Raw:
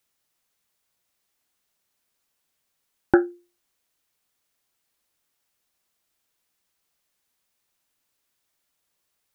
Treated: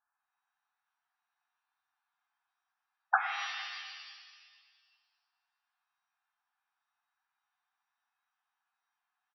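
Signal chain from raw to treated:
pitch-shifted copies added −7 semitones −8 dB, −3 semitones −4 dB
linear-phase brick-wall band-pass 690–1,800 Hz
reverb with rising layers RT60 1.6 s, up +7 semitones, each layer −2 dB, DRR 5 dB
level −2 dB

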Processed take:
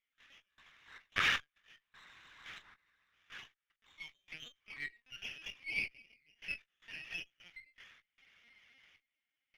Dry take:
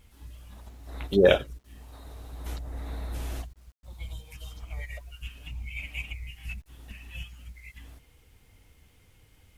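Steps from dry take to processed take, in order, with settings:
wrap-around overflow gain 18 dB
harmonic generator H 3 −29 dB, 5 −13 dB, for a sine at −18 dBFS
gate pattern ".x.xx.x.x.xxxx.." 77 BPM −24 dB
four-pole ladder high-pass 1,400 Hz, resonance 35%
double-tracking delay 27 ms −9.5 dB
linear-prediction vocoder at 8 kHz pitch kept
windowed peak hold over 3 samples
level +2 dB

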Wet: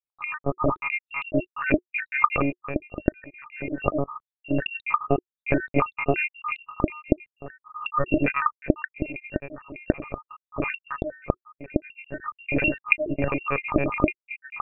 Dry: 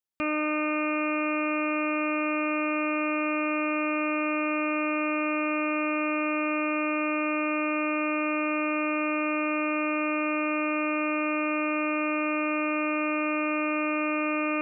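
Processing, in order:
time-frequency cells dropped at random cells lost 81%
dynamic equaliser 520 Hz, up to +4 dB, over −44 dBFS, Q 1.7
notch filter 360 Hz, Q 12
one-pitch LPC vocoder at 8 kHz 140 Hz
automatic gain control gain up to 12 dB
level −1 dB

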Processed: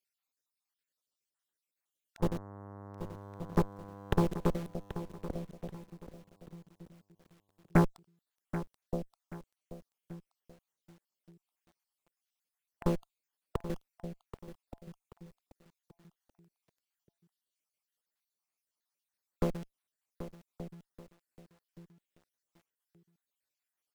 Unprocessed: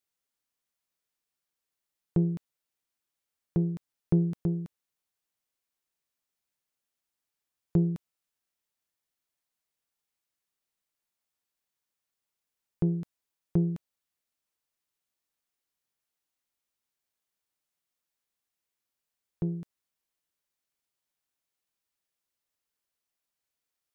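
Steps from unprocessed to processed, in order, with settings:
time-frequency cells dropped at random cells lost 59%
in parallel at −10.5 dB: bit reduction 7 bits
on the sum: low-shelf EQ 140 Hz −11 dB
0:02.19–0:04.27: hum with harmonics 100 Hz, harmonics 11, −48 dBFS −4 dB per octave
on a send: repeating echo 1,176 ms, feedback 26%, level −10 dB
on the sum: harmonic generator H 6 −32 dB, 8 −9 dB, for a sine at −14.5 dBFS
feedback echo at a low word length 782 ms, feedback 35%, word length 9 bits, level −12 dB

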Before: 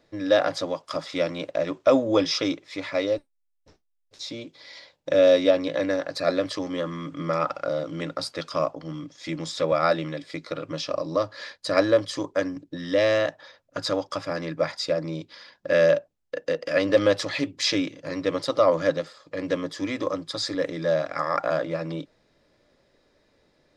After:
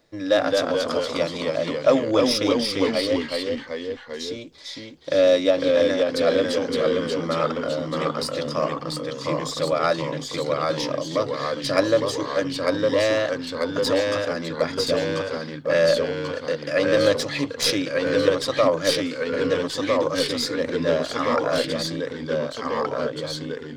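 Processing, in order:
stylus tracing distortion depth 0.021 ms
high-shelf EQ 7,100 Hz +9 dB
delay with pitch and tempo change per echo 199 ms, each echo −1 semitone, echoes 3

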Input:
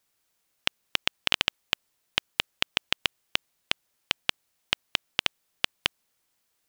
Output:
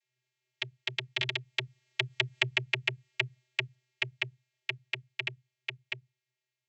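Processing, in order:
source passing by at 0:02.39, 30 m/s, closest 5.9 metres
downward compressor 6 to 1, threshold −37 dBFS, peak gain reduction 17 dB
high shelf with overshoot 1,600 Hz +7.5 dB, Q 3
channel vocoder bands 32, square 126 Hz
level +5 dB

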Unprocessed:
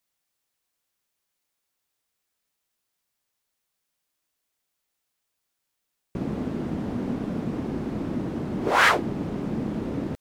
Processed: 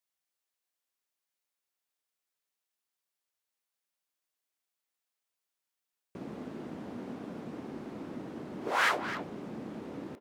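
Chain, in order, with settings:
high-pass filter 320 Hz 6 dB per octave
far-end echo of a speakerphone 260 ms, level −9 dB
level −8.5 dB

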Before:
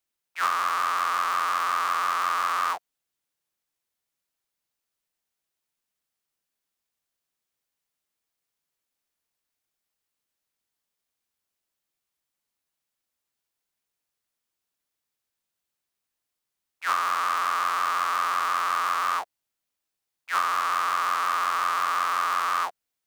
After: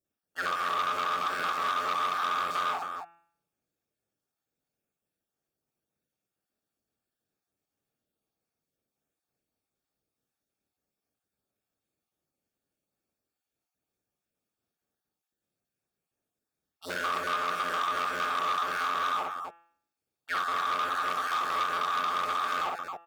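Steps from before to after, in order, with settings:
time-frequency cells dropped at random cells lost 31%
leveller curve on the samples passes 1
notch comb filter 1,000 Hz
hum removal 169.2 Hz, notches 21
downward compressor, threshold −28 dBFS, peak gain reduction 9 dB
tilt shelving filter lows +8.5 dB, about 810 Hz
loudspeakers that aren't time-aligned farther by 19 metres −4 dB, 92 metres −7 dB
saturating transformer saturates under 2,200 Hz
level +4.5 dB

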